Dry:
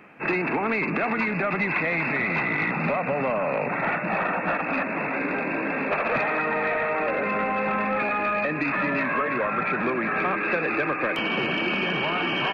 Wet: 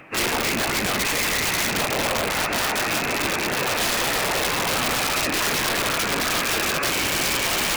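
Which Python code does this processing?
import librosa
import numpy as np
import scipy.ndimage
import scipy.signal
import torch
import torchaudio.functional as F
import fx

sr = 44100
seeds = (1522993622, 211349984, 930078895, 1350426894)

p1 = np.clip(10.0 ** (23.0 / 20.0) * x, -1.0, 1.0) / 10.0 ** (23.0 / 20.0)
p2 = fx.whisperise(p1, sr, seeds[0])
p3 = fx.low_shelf(p2, sr, hz=120.0, db=-4.5)
p4 = fx.stretch_vocoder_free(p3, sr, factor=0.62)
p5 = fx.high_shelf(p4, sr, hz=5100.0, db=9.5)
p6 = p5 + fx.echo_diffused(p5, sr, ms=1536, feedback_pct=55, wet_db=-14, dry=0)
p7 = (np.mod(10.0 ** (23.5 / 20.0) * p6 + 1.0, 2.0) - 1.0) / 10.0 ** (23.5 / 20.0)
y = p7 * 10.0 ** (7.0 / 20.0)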